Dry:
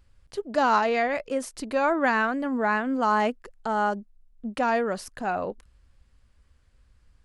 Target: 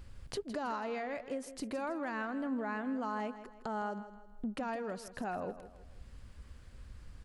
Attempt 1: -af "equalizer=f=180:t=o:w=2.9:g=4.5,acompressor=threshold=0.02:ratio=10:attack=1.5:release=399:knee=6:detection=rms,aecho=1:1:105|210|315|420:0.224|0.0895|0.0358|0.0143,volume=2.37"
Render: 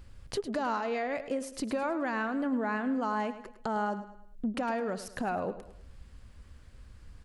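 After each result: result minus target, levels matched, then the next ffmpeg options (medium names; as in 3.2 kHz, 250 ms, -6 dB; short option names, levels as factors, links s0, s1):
echo 56 ms early; compression: peak gain reduction -6 dB
-af "equalizer=f=180:t=o:w=2.9:g=4.5,acompressor=threshold=0.02:ratio=10:attack=1.5:release=399:knee=6:detection=rms,aecho=1:1:161|322|483|644:0.224|0.0895|0.0358|0.0143,volume=2.37"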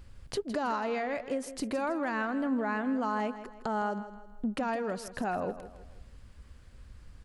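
compression: peak gain reduction -6 dB
-af "equalizer=f=180:t=o:w=2.9:g=4.5,acompressor=threshold=0.00944:ratio=10:attack=1.5:release=399:knee=6:detection=rms,aecho=1:1:161|322|483|644:0.224|0.0895|0.0358|0.0143,volume=2.37"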